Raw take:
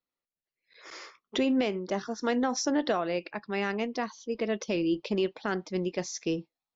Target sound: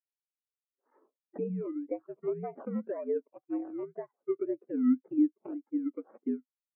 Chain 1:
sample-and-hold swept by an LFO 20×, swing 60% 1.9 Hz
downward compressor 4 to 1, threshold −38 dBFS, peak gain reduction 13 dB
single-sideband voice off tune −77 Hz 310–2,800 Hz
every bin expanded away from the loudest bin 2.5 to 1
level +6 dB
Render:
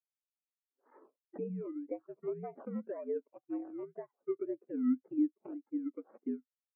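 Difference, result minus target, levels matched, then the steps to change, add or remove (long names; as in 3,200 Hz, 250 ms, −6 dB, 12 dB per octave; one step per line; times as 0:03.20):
downward compressor: peak gain reduction +5 dB
change: downward compressor 4 to 1, threshold −31.5 dBFS, peak gain reduction 8 dB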